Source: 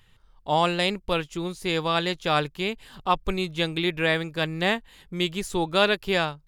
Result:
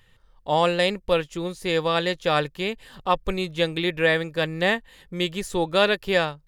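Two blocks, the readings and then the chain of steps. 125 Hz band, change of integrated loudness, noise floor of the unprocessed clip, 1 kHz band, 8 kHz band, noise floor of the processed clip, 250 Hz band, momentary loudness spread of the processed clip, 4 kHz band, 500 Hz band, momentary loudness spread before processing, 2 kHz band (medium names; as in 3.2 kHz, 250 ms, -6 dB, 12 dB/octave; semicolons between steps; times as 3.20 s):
0.0 dB, +1.5 dB, -58 dBFS, +0.5 dB, 0.0 dB, -58 dBFS, +0.5 dB, 9 LU, 0.0 dB, +3.5 dB, 8 LU, +1.5 dB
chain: small resonant body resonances 520/1800 Hz, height 8 dB, ringing for 35 ms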